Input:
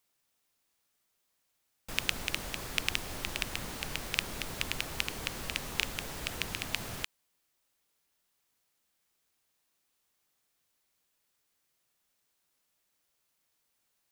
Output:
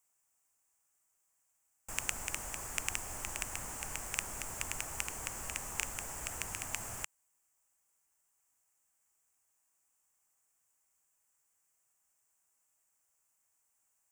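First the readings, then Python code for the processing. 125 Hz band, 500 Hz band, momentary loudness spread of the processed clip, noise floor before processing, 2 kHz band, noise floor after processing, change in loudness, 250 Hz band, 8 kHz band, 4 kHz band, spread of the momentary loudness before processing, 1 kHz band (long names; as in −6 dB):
−6.0 dB, −6.0 dB, 4 LU, −78 dBFS, −6.0 dB, −78 dBFS, −3.5 dB, −8.5 dB, +4.0 dB, −10.5 dB, 5 LU, −2.0 dB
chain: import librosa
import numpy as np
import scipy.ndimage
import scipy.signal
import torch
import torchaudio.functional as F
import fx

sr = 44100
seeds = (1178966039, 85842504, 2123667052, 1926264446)

y = fx.curve_eq(x, sr, hz=(100.0, 160.0, 490.0, 830.0, 1800.0, 2800.0, 3900.0, 7500.0, 11000.0), db=(0, -5, -3, 4, 0, -3, -14, 13, 3))
y = y * 10.0 ** (-4.5 / 20.0)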